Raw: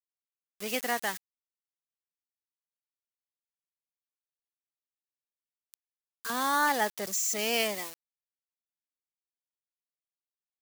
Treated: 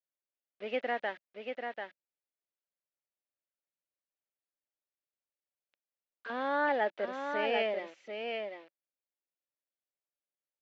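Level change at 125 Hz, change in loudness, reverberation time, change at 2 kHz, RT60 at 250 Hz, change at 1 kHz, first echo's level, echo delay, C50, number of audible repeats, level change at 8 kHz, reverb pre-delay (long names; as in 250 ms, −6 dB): can't be measured, −5.5 dB, no reverb audible, −3.0 dB, no reverb audible, −3.5 dB, −5.5 dB, 741 ms, no reverb audible, 1, below −35 dB, no reverb audible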